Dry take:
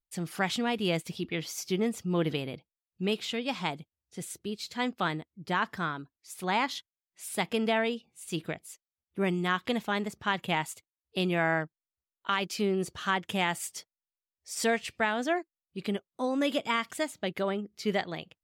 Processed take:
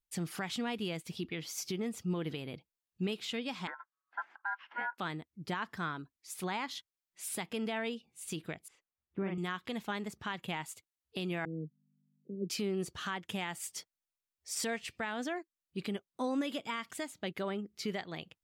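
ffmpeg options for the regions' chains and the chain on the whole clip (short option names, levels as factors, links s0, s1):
-filter_complex "[0:a]asettb=1/sr,asplit=3[s0][s1][s2];[s0]atrim=end=3.674[s3];[s1]atrim=start=3.67:end=4.98,asetpts=PTS-STARTPTS,afade=t=in:d=0.004:c=qsin,afade=t=out:st=1.306:d=0.004:c=qsin,aeval=exprs='val(0)*sin(2*PI*1200*n/s)':c=same,highpass=f=240:w=0.5412,highpass=f=240:w=1.3066,equalizer=f=430:t=q:w=4:g=-5,equalizer=f=620:t=q:w=4:g=4,equalizer=f=900:t=q:w=4:g=4,equalizer=f=1600:t=q:w=4:g=9,lowpass=f=2200:w=0.5412,lowpass=f=2200:w=1.3066[s4];[s2]atrim=start=4.976[s5];[s3][s4]acrossfade=d=0.004:c1=hsin:c2=qsin[s6];[s6][s5]acrossfade=d=0.004:c1=qsin:c2=hsin,asettb=1/sr,asplit=3[s7][s8][s9];[s7]atrim=end=8.684[s10];[s8]atrim=start=8.68:end=9.38,asetpts=PTS-STARTPTS,afade=t=in:d=0.004:c=qsin,afade=t=out:st=0.696:d=0.004:c=qsin,lowpass=2000,asplit=2[s11][s12];[s12]adelay=41,volume=0.708[s13];[s11][s13]amix=inputs=2:normalize=0,atrim=end_sample=30870[s14];[s9]atrim=start=9.376[s15];[s10][s14]acrossfade=d=0.004:c1=hsin:c2=qsin[s16];[s16][s15]acrossfade=d=0.004:c1=qsin:c2=hsin,asettb=1/sr,asplit=3[s17][s18][s19];[s17]atrim=end=11.454[s20];[s18]atrim=start=11.45:end=12.5,asetpts=PTS-STARTPTS,afade=t=in:d=0.004:c=qsin,afade=t=out:st=1.046:d=0.004:c=qsin,aeval=exprs='val(0)+0.000562*(sin(2*PI*50*n/s)+sin(2*PI*2*50*n/s)/2+sin(2*PI*3*50*n/s)/3+sin(2*PI*4*50*n/s)/4+sin(2*PI*5*50*n/s)/5)':c=same,asuperpass=centerf=260:order=20:qfactor=0.68[s21];[s19]atrim=start=12.496[s22];[s20][s21]acrossfade=d=0.004:c1=hsin:c2=qsin[s23];[s23][s22]acrossfade=d=0.004:c1=qsin:c2=hsin,equalizer=f=600:t=o:w=0.77:g=-3,alimiter=level_in=1.26:limit=0.0631:level=0:latency=1:release=370,volume=0.794"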